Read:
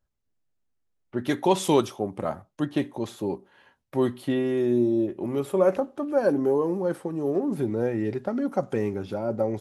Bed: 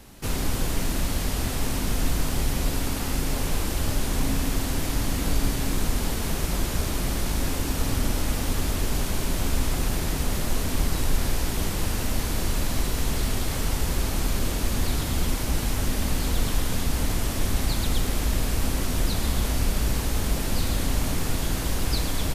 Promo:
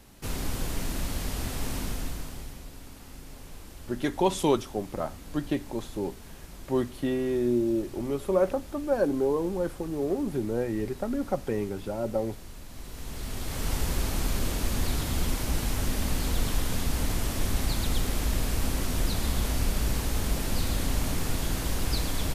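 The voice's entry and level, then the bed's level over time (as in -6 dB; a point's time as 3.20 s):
2.75 s, -3.0 dB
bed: 1.81 s -5.5 dB
2.67 s -19 dB
12.67 s -19 dB
13.73 s -3 dB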